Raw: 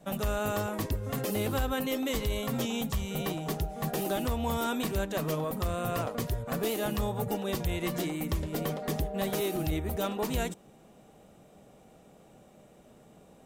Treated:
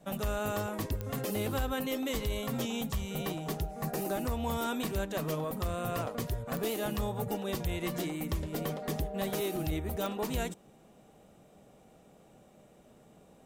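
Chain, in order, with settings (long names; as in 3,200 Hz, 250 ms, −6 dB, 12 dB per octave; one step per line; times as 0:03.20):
0:03.71–0:04.33: parametric band 3,300 Hz −10 dB 0.37 octaves
digital clicks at 0:01.01/0:06.57/0:10.06, −20 dBFS
level −2.5 dB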